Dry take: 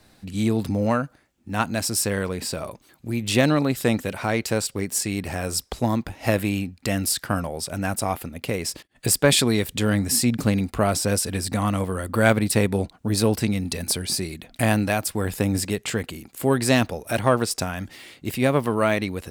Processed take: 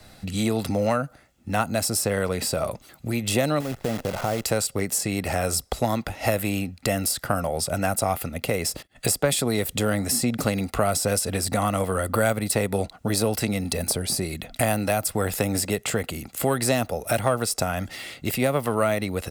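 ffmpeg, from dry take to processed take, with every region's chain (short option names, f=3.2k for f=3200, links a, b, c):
-filter_complex "[0:a]asettb=1/sr,asplit=3[a][b][c];[a]atrim=end=3.604[d];[b]atrim=start=3.6:end=4.45,asetpts=PTS-STARTPTS,afade=t=in:d=0.004:c=qsin,afade=t=out:st=0.846:d=0.004:c=qsin,lowpass=1k,acompressor=threshold=-25dB:ratio=4:attack=3.2:release=140:knee=1:detection=peak,acrusher=bits=7:dc=4:mix=0:aa=0.000001[e];[c]atrim=start=4.446[f];[d][e]acrossfade=d=0.004:c1=hsin:c2=qsin[g];[g][f]acrossfade=d=0.004:c1=qsin:c2=hsin,aecho=1:1:1.5:0.36,acrossover=split=280|1100|8000[h][i][j][k];[h]acompressor=threshold=-36dB:ratio=4[l];[i]acompressor=threshold=-29dB:ratio=4[m];[j]acompressor=threshold=-37dB:ratio=4[n];[k]acompressor=threshold=-33dB:ratio=4[o];[l][m][n][o]amix=inputs=4:normalize=0,volume=6dB"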